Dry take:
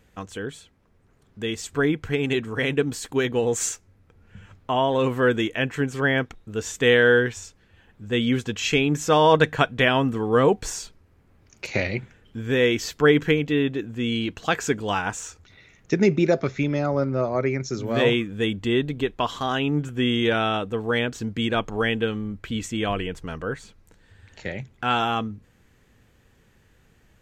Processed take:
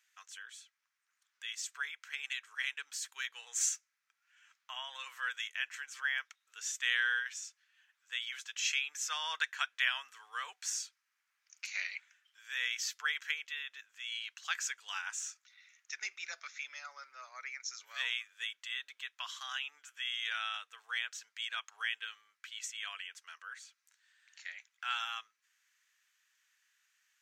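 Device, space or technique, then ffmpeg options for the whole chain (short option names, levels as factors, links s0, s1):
headphones lying on a table: -af "highpass=f=1400:w=0.5412,highpass=f=1400:w=1.3066,equalizer=f=6000:t=o:w=0.57:g=6.5,volume=0.355"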